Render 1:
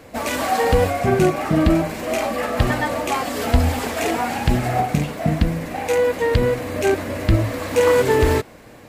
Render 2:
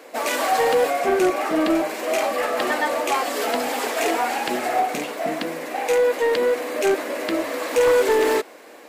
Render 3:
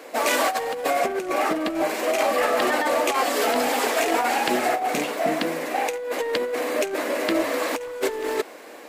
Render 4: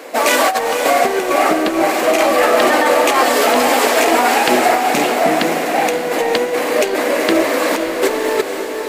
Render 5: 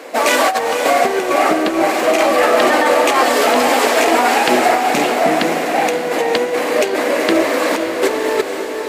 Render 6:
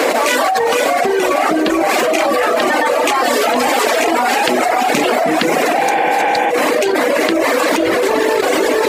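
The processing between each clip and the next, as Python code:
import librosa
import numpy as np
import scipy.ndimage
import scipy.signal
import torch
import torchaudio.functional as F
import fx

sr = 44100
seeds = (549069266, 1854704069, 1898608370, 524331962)

y1 = scipy.signal.sosfilt(scipy.signal.butter(4, 320.0, 'highpass', fs=sr, output='sos'), x)
y1 = 10.0 ** (-12.5 / 20.0) * np.tanh(y1 / 10.0 ** (-12.5 / 20.0))
y1 = y1 * librosa.db_to_amplitude(1.5)
y2 = fx.over_compress(y1, sr, threshold_db=-22.0, ratio=-0.5)
y3 = fx.echo_diffused(y2, sr, ms=507, feedback_pct=53, wet_db=-6.5)
y3 = y3 * librosa.db_to_amplitude(8.0)
y4 = scipy.signal.sosfilt(scipy.signal.butter(2, 47.0, 'highpass', fs=sr, output='sos'), y3)
y4 = fx.high_shelf(y4, sr, hz=12000.0, db=-7.5)
y5 = fx.dereverb_blind(y4, sr, rt60_s=1.1)
y5 = fx.spec_repair(y5, sr, seeds[0], start_s=5.87, length_s=0.6, low_hz=210.0, high_hz=3600.0, source='before')
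y5 = fx.env_flatten(y5, sr, amount_pct=100)
y5 = y5 * librosa.db_to_amplitude(-2.5)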